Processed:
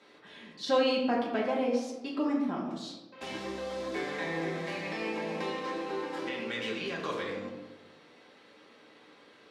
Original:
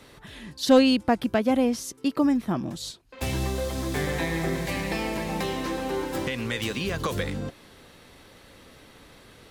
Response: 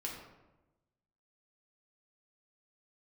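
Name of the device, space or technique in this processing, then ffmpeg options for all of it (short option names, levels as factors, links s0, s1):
supermarket ceiling speaker: -filter_complex "[0:a]highpass=290,lowpass=5100[s0];[1:a]atrim=start_sample=2205[s1];[s0][s1]afir=irnorm=-1:irlink=0,volume=0.596"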